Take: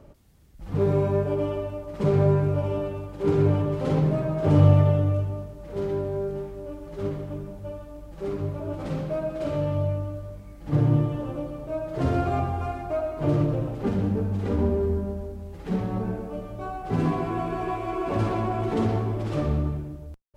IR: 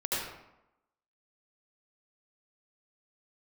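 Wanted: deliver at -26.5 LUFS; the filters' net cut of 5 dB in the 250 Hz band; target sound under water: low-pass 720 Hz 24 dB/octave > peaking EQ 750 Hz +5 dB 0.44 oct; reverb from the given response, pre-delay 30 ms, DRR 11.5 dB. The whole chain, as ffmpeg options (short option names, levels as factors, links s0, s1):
-filter_complex "[0:a]equalizer=f=250:t=o:g=-8.5,asplit=2[s0][s1];[1:a]atrim=start_sample=2205,adelay=30[s2];[s1][s2]afir=irnorm=-1:irlink=0,volume=0.112[s3];[s0][s3]amix=inputs=2:normalize=0,lowpass=f=720:w=0.5412,lowpass=f=720:w=1.3066,equalizer=f=750:t=o:w=0.44:g=5,volume=1.12"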